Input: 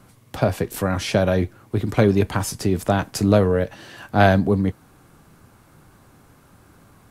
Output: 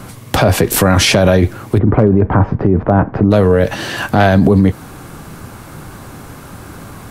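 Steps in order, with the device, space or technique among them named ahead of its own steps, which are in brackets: 1.78–3.31 Bessel low-pass 1000 Hz, order 4; loud club master (compressor 2:1, threshold -19 dBFS, peak gain reduction 6 dB; hard clip -11 dBFS, distortion -27 dB; maximiser +20 dB); gain -1 dB

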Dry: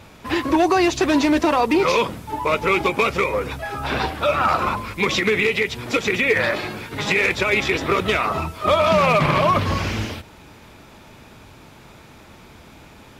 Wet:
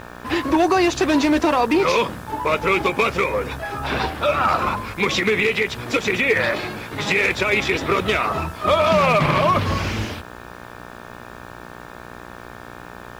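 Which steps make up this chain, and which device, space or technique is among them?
video cassette with head-switching buzz (buzz 60 Hz, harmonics 30, -39 dBFS 0 dB/oct; white noise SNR 39 dB)

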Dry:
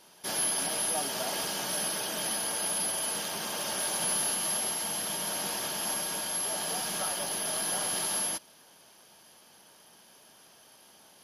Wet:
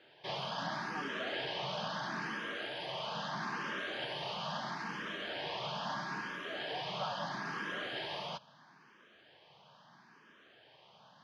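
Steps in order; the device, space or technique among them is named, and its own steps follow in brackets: barber-pole phaser into a guitar amplifier (endless phaser +0.76 Hz; soft clip -26 dBFS, distortion -22 dB; speaker cabinet 80–3900 Hz, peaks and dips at 140 Hz +10 dB, 1100 Hz +5 dB, 1700 Hz +5 dB)

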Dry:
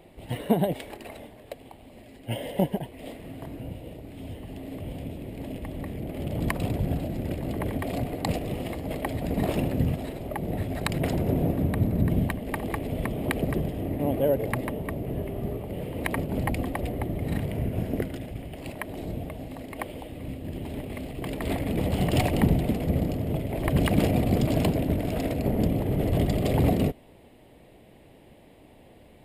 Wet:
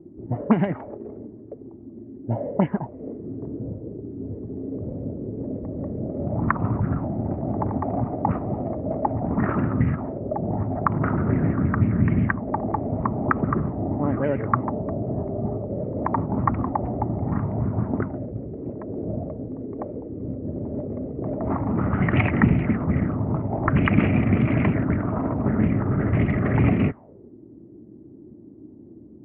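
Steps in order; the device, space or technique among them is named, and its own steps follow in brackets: envelope filter bass rig (envelope low-pass 310–2500 Hz up, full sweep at -19 dBFS; speaker cabinet 73–2100 Hz, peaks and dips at 110 Hz +5 dB, 220 Hz +4 dB, 500 Hz -8 dB, 710 Hz -6 dB, 1300 Hz +8 dB); gain +2.5 dB

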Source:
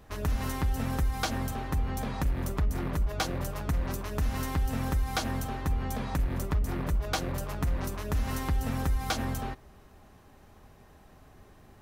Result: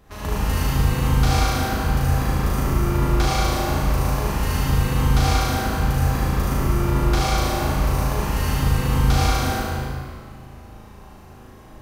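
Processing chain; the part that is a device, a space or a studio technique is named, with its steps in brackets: tunnel (flutter echo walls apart 6.4 m, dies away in 1.3 s; reverb RT60 2.1 s, pre-delay 57 ms, DRR -6 dB)

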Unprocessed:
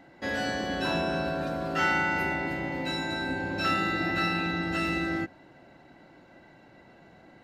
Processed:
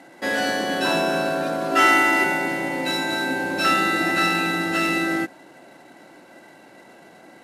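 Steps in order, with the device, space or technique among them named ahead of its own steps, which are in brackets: early wireless headset (HPF 240 Hz 12 dB/oct; CVSD 64 kbps); 1.71–2.24 comb 3 ms, depth 75%; gain +8 dB

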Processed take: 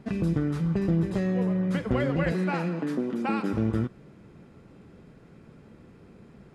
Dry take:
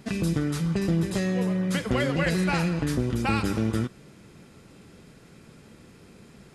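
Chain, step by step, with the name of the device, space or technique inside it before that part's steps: 2.32–3.53 steep high-pass 180 Hz 36 dB/oct; through cloth (high shelf 2900 Hz -17.5 dB)

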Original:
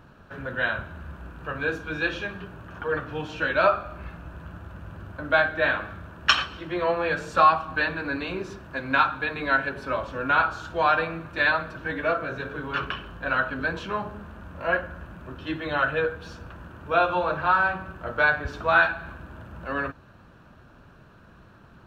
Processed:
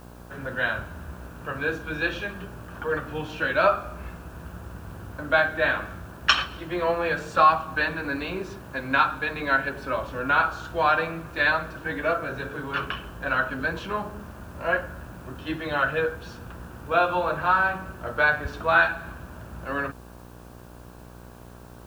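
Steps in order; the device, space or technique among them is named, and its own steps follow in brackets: video cassette with head-switching buzz (buzz 60 Hz, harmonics 19, -46 dBFS -4 dB/oct; white noise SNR 32 dB)

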